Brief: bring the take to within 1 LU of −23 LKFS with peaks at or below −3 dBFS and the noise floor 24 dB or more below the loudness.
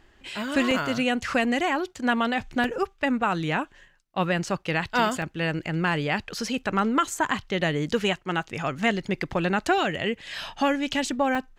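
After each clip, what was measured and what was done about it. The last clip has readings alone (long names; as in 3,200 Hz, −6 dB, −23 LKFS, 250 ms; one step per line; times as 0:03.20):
number of dropouts 4; longest dropout 2.0 ms; integrated loudness −26.0 LKFS; sample peak −11.0 dBFS; target loudness −23.0 LKFS
→ repair the gap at 0:00.71/0:02.64/0:05.22/0:11.35, 2 ms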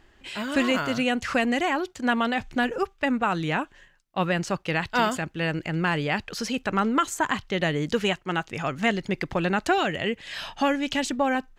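number of dropouts 0; integrated loudness −26.0 LKFS; sample peak −11.0 dBFS; target loudness −23.0 LKFS
→ level +3 dB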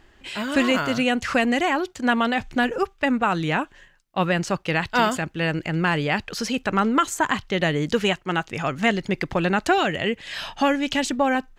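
integrated loudness −23.0 LKFS; sample peak −8.0 dBFS; background noise floor −56 dBFS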